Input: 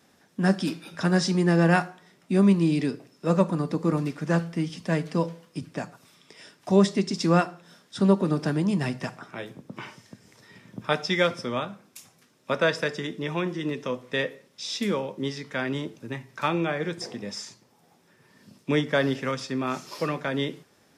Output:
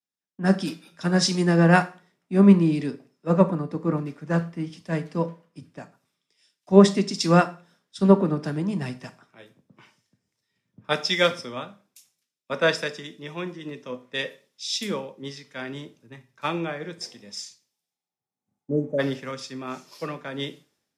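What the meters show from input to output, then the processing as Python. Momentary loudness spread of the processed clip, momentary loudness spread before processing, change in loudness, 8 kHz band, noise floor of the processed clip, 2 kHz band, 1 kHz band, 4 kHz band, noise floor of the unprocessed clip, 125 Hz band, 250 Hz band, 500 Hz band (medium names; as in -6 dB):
18 LU, 16 LU, +2.5 dB, +4.0 dB, under -85 dBFS, +0.5 dB, +1.5 dB, +3.0 dB, -62 dBFS, +1.5 dB, +1.5 dB, +2.0 dB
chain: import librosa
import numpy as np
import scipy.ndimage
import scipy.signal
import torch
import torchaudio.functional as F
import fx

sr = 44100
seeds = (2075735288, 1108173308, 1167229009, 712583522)

y = fx.rev_schroeder(x, sr, rt60_s=0.46, comb_ms=28, drr_db=14.0)
y = fx.spec_repair(y, sr, seeds[0], start_s=17.98, length_s=0.99, low_hz=640.0, high_hz=5900.0, source='before')
y = fx.band_widen(y, sr, depth_pct=100)
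y = F.gain(torch.from_numpy(y), -2.0).numpy()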